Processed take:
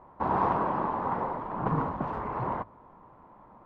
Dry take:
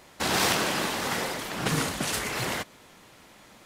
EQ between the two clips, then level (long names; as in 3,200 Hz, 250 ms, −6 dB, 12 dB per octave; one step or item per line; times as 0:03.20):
low-pass with resonance 1,000 Hz, resonance Q 4.8
spectral tilt −2 dB per octave
mains-hum notches 50/100 Hz
−6.0 dB